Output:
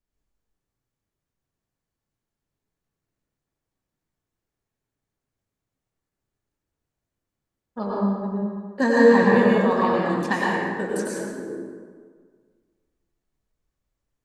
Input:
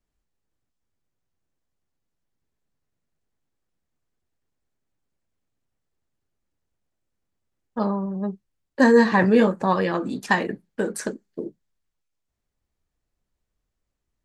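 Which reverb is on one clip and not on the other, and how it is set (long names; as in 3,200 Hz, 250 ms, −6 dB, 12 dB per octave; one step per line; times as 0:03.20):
dense smooth reverb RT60 1.7 s, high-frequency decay 0.6×, pre-delay 85 ms, DRR −4.5 dB
level −5.5 dB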